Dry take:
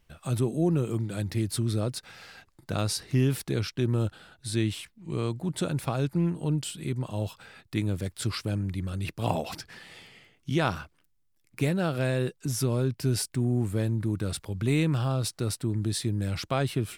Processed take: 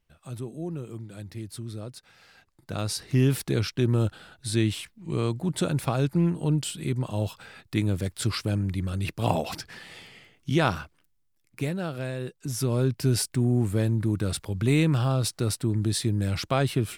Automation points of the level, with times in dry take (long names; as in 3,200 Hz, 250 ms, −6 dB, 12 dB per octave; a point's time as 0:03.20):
0:02.13 −9 dB
0:03.27 +3 dB
0:10.68 +3 dB
0:12.19 −6 dB
0:12.84 +3 dB